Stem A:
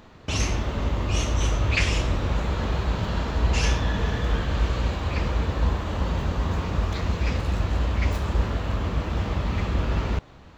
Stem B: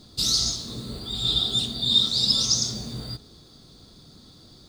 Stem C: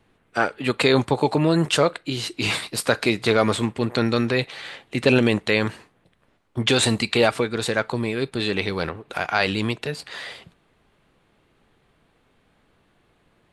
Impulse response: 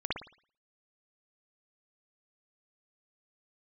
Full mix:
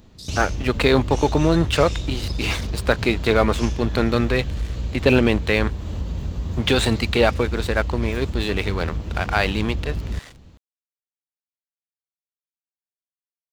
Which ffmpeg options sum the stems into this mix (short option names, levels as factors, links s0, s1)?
-filter_complex "[0:a]volume=1.41[s0];[1:a]afwtdn=0.0316,volume=0.299[s1];[2:a]lowpass=f=3800:p=1,aeval=exprs='sgn(val(0))*max(abs(val(0))-0.0168,0)':c=same,volume=1.26[s2];[s0][s1]amix=inputs=2:normalize=0,equalizer=f=1200:t=o:w=2.9:g=-14,acompressor=threshold=0.0631:ratio=2.5,volume=1[s3];[s2][s3]amix=inputs=2:normalize=0"